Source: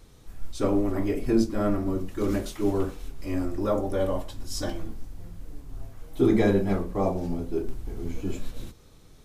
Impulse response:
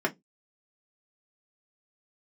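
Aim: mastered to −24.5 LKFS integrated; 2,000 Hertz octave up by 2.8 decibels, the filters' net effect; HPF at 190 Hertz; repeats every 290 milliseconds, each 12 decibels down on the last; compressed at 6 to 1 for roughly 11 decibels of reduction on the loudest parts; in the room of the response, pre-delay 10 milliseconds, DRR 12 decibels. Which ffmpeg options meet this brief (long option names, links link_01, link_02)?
-filter_complex "[0:a]highpass=190,equalizer=frequency=2000:width_type=o:gain=3.5,acompressor=threshold=-29dB:ratio=6,aecho=1:1:290|580|870:0.251|0.0628|0.0157,asplit=2[link_01][link_02];[1:a]atrim=start_sample=2205,adelay=10[link_03];[link_02][link_03]afir=irnorm=-1:irlink=0,volume=-22.5dB[link_04];[link_01][link_04]amix=inputs=2:normalize=0,volume=9.5dB"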